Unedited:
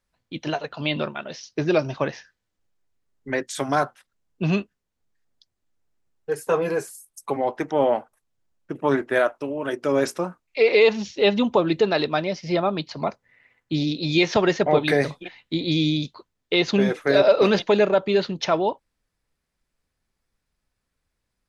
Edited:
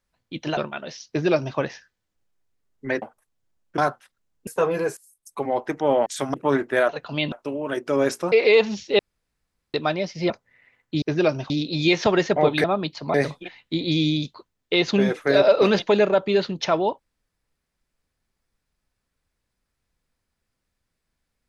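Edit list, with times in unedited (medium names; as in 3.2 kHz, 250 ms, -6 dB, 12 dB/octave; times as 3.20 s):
0.57–1.00 s: move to 9.28 s
1.52–2.00 s: copy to 13.80 s
3.45–3.73 s: swap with 7.97–8.73 s
4.42–6.38 s: delete
6.88–7.44 s: fade in, from -18.5 dB
10.28–10.60 s: delete
11.27–12.02 s: room tone
12.58–13.08 s: move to 14.94 s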